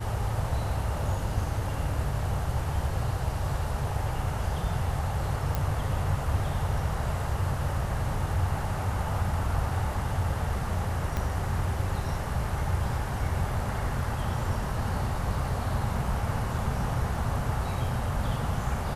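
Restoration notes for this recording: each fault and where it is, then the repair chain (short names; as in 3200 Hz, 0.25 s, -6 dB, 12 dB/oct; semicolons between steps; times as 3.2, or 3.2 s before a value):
5.55 pop
11.17 pop -16 dBFS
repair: de-click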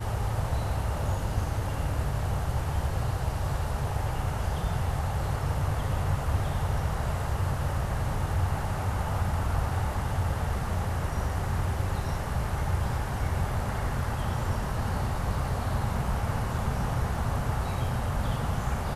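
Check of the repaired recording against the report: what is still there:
11.17 pop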